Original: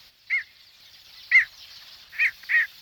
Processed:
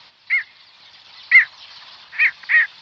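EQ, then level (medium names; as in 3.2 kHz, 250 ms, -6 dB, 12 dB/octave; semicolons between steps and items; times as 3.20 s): high-pass 120 Hz 12 dB/octave; low-pass 4.7 kHz 24 dB/octave; peaking EQ 970 Hz +10 dB 0.65 oct; +5.5 dB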